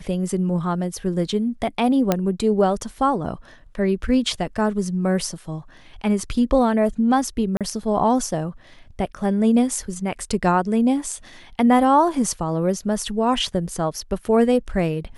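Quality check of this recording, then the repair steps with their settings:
2.12 s: pop -4 dBFS
7.57–7.61 s: dropout 37 ms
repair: de-click; interpolate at 7.57 s, 37 ms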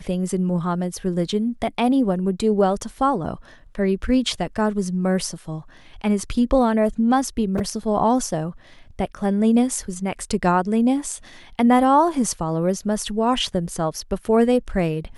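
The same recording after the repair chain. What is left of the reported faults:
nothing left

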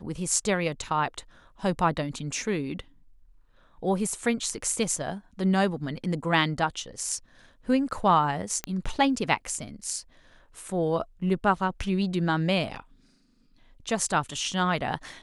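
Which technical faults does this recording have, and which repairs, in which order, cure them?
8.64 s: pop -14 dBFS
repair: de-click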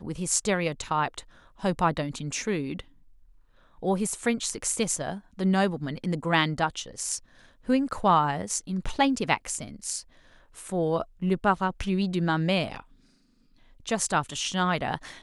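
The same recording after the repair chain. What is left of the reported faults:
nothing left

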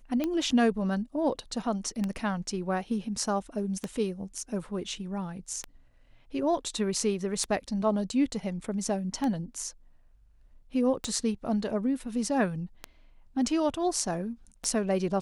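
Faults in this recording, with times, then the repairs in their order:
tick 33 1/3 rpm -17 dBFS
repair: de-click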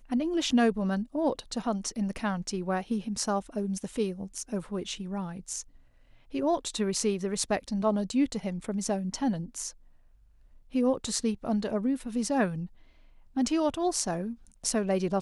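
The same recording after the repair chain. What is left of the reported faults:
nothing left

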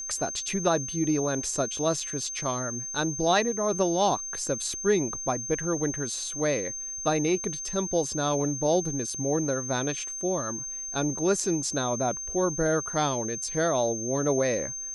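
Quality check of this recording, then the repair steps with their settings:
whine 6.3 kHz -33 dBFS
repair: band-stop 6.3 kHz, Q 30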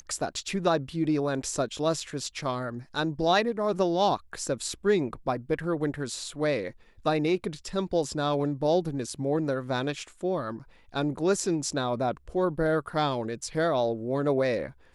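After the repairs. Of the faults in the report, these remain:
nothing left

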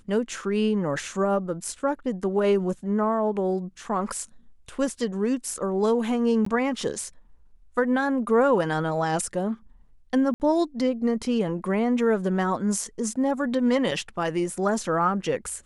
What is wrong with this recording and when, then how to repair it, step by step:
6.45–6.46 s: dropout 14 ms
10.34–10.40 s: dropout 59 ms
13.91 s: dropout 3.7 ms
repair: interpolate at 6.45 s, 14 ms; interpolate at 10.34 s, 59 ms; interpolate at 13.91 s, 3.7 ms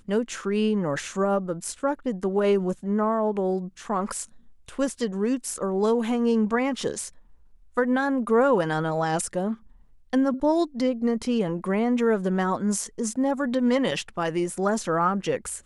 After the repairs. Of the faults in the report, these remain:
nothing left

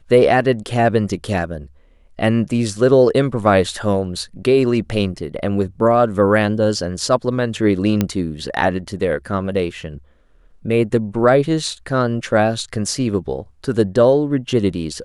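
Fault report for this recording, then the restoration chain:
8.01 s: pop -4 dBFS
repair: de-click

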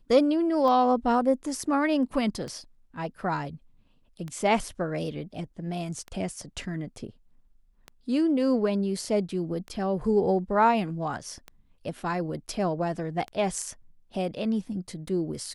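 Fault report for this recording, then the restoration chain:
tick 33 1/3 rpm -23 dBFS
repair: de-click

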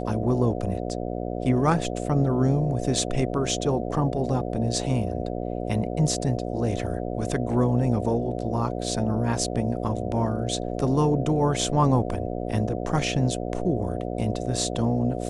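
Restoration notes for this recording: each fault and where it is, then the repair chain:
buzz 60 Hz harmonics 12 -30 dBFS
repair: de-hum 60 Hz, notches 12

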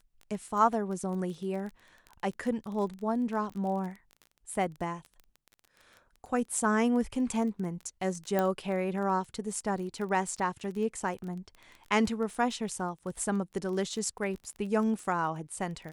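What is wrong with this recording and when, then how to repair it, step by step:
crackle 21 per s -37 dBFS
8.39 s: pop -15 dBFS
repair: de-click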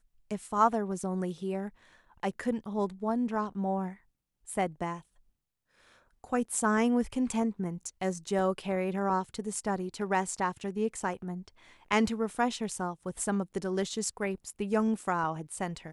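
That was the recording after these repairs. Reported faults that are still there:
8.39 s: pop

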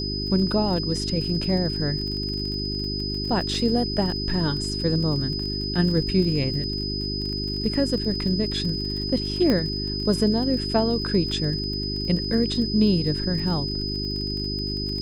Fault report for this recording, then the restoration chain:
crackle 31 per s -31 dBFS
hum 50 Hz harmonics 8 -30 dBFS
whine 5 kHz -29 dBFS
9.50 s: pop -11 dBFS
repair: de-click; de-hum 50 Hz, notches 8; band-stop 5 kHz, Q 30

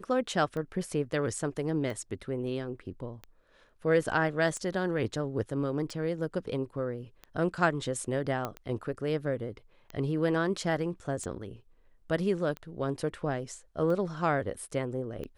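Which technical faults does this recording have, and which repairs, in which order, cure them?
tick 45 rpm -26 dBFS
8.45 s: pop -19 dBFS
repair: de-click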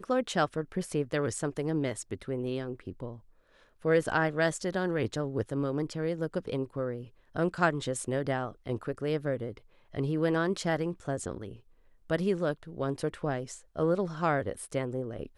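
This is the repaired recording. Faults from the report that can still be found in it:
nothing left

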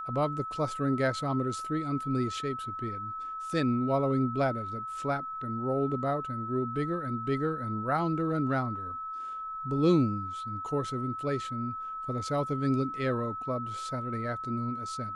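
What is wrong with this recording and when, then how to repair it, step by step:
whine 1.3 kHz -35 dBFS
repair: band-stop 1.3 kHz, Q 30

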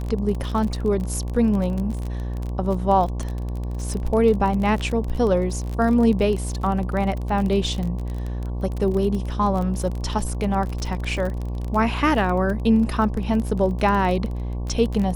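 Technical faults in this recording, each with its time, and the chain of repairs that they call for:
buzz 60 Hz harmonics 19 -27 dBFS
crackle 31 per s -26 dBFS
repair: de-click; de-hum 60 Hz, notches 19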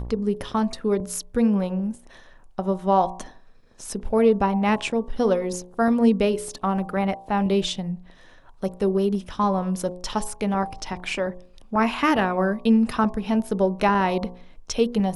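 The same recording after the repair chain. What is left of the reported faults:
nothing left

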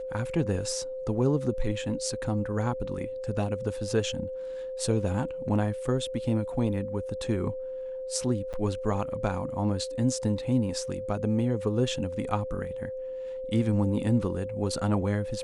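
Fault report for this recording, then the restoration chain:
whine 520 Hz -33 dBFS
8.53–8.54 s: dropout 7.9 ms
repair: band-stop 520 Hz, Q 30; interpolate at 8.53 s, 7.9 ms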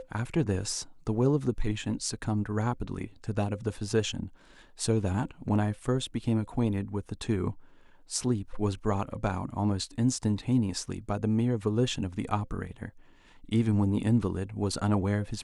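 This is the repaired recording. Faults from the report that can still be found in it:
nothing left

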